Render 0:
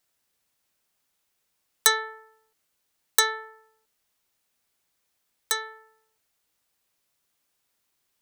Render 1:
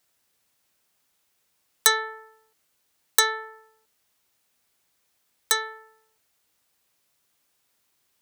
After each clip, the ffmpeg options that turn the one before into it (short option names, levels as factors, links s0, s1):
-filter_complex "[0:a]highpass=42,asplit=2[s0][s1];[s1]alimiter=limit=0.316:level=0:latency=1:release=381,volume=1.33[s2];[s0][s2]amix=inputs=2:normalize=0,volume=0.708"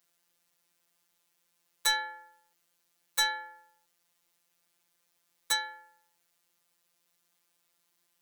-af "volume=8.41,asoftclip=hard,volume=0.119,afftfilt=real='hypot(re,im)*cos(PI*b)':imag='0':win_size=1024:overlap=0.75"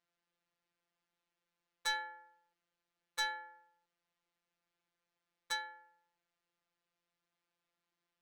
-af "adynamicsmooth=sensitivity=1:basefreq=3500,volume=0.501"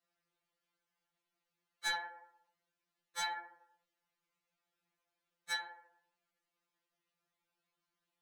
-af "afftfilt=real='hypot(re,im)*cos(2*PI*random(0))':imag='hypot(re,im)*sin(2*PI*random(1))':win_size=512:overlap=0.75,afftfilt=real='re*2.83*eq(mod(b,8),0)':imag='im*2.83*eq(mod(b,8),0)':win_size=2048:overlap=0.75,volume=2.24"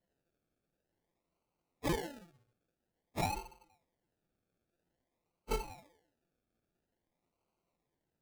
-af "acrusher=samples=35:mix=1:aa=0.000001:lfo=1:lforange=21:lforate=0.5,volume=1.41"